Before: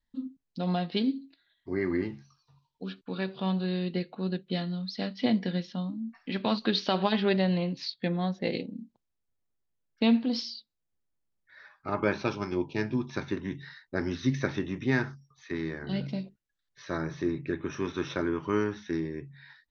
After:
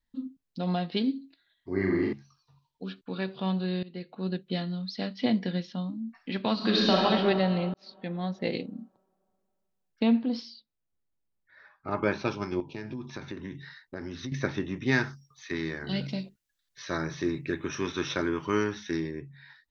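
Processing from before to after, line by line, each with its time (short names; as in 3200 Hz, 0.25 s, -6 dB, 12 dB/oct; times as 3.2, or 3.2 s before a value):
1.7–2.13 flutter echo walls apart 7.1 m, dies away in 0.89 s
3.83–4.28 fade in, from -19.5 dB
6.53–6.96 reverb throw, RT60 2.5 s, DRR -4.5 dB
7.74–8.41 fade in
10.03–11.91 high shelf 2800 Hz -10.5 dB
12.6–14.32 compressor, threshold -33 dBFS
14.86–19.11 high shelf 2100 Hz +9 dB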